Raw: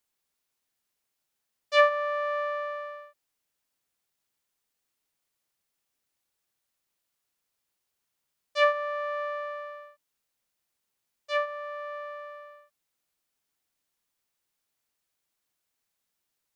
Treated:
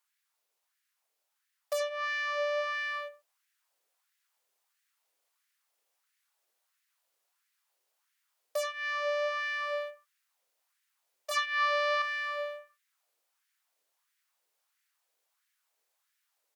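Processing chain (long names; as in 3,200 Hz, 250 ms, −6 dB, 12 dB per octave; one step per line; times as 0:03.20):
in parallel at −4 dB: slack as between gear wheels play −43 dBFS
on the sum: downward compressor 10 to 1, threshold −36 dBFS, peak gain reduction 25 dB
on a send: single-tap delay 89 ms −15.5 dB
on the sum: harmonic generator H 3 −8 dB, 5 −13 dB, 8 −9 dB, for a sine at −23.5 dBFS
0:11.31–0:12.02: graphic EQ with 10 bands 500 Hz −4 dB, 1,000 Hz +8 dB, 2,000 Hz +3 dB, 4,000 Hz +8 dB
auto-filter high-pass sine 1.5 Hz 460–1,800 Hz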